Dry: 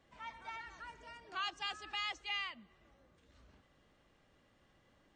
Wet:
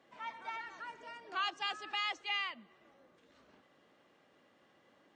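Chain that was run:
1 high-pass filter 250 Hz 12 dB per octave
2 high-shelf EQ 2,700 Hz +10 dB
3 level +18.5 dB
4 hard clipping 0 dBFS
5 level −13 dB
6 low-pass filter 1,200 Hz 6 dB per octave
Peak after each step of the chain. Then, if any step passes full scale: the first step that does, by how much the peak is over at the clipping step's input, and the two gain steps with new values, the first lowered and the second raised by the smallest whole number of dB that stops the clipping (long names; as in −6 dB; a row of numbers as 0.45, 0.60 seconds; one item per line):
−28.0, −23.5, −5.0, −5.0, −18.0, −25.0 dBFS
no step passes full scale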